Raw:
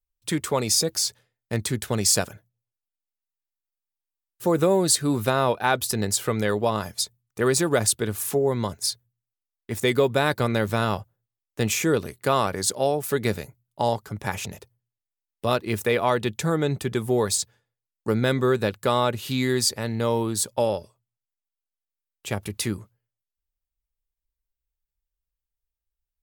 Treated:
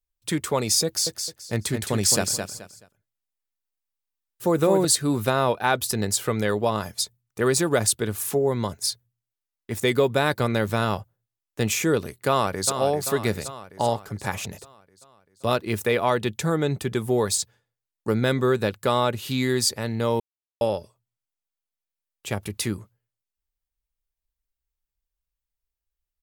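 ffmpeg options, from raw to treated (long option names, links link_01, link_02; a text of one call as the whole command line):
ffmpeg -i in.wav -filter_complex "[0:a]asettb=1/sr,asplit=3[link_01][link_02][link_03];[link_01]atrim=end=0.854[link_04];[link_02]atrim=start=0.85:end=4.85,asetpts=PTS-STARTPTS,afade=type=in:duration=0.004:curve=qsin,afade=type=out:start_time=3.996:duration=0.004:curve=qsin,aecho=1:1:214|428|642:0.501|0.13|0.0339,atrim=end_sample=176400[link_05];[link_03]atrim=start=4.846[link_06];[link_04][link_05]acrossfade=duration=0.004:curve1=hsin:curve2=qsin[link_07];[link_07][link_06]acrossfade=duration=0.004:curve1=qsin:curve2=hsin,asplit=2[link_08][link_09];[link_09]afade=type=in:start_time=12.28:duration=0.01,afade=type=out:start_time=12.7:duration=0.01,aecho=0:1:390|780|1170|1560|1950|2340|2730|3120:0.398107|0.238864|0.143319|0.0859911|0.0515947|0.0309568|0.0185741|0.0111445[link_10];[link_08][link_10]amix=inputs=2:normalize=0,asplit=3[link_11][link_12][link_13];[link_11]atrim=end=20.2,asetpts=PTS-STARTPTS,afade=type=out:start_time=20.196:duration=0.004:curve=hsin[link_14];[link_12]atrim=start=20.2:end=20.61,asetpts=PTS-STARTPTS,volume=0[link_15];[link_13]atrim=start=20.61,asetpts=PTS-STARTPTS,afade=type=in:duration=0.004:curve=hsin[link_16];[link_14][link_15][link_16]concat=n=3:v=0:a=1" out.wav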